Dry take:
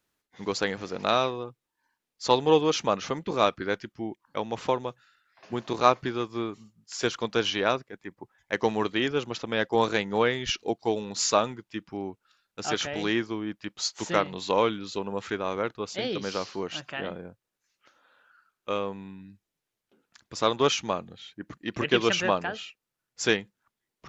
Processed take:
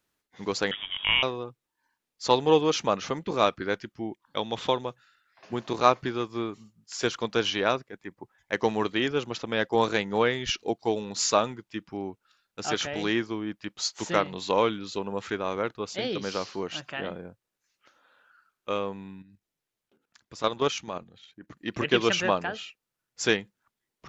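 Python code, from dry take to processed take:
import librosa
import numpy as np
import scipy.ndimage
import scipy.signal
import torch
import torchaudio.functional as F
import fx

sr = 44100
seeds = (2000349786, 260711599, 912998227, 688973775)

y = fx.freq_invert(x, sr, carrier_hz=3500, at=(0.71, 1.23))
y = fx.peak_eq(y, sr, hz=3500.0, db=12.5, octaves=0.29, at=(4.22, 4.81))
y = fx.level_steps(y, sr, step_db=11, at=(19.22, 21.57))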